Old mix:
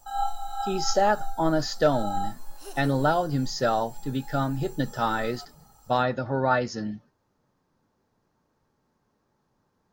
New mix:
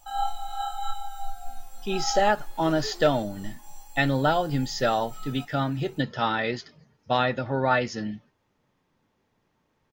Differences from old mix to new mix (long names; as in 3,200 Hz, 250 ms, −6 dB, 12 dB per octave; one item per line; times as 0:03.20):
speech: entry +1.20 s
second sound: add high-frequency loss of the air 86 metres
master: add flat-topped bell 2,600 Hz +8 dB 1.1 octaves